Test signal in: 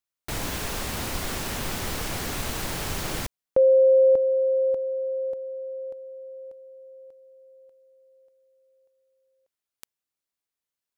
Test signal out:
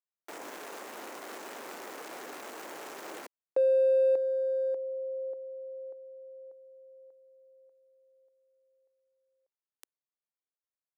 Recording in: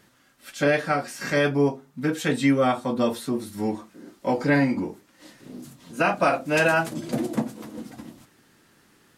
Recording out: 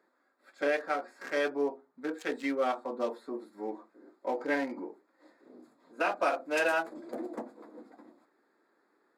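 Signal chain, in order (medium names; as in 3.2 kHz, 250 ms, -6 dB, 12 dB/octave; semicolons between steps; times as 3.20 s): local Wiener filter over 15 samples; high-pass 320 Hz 24 dB/octave; trim -7 dB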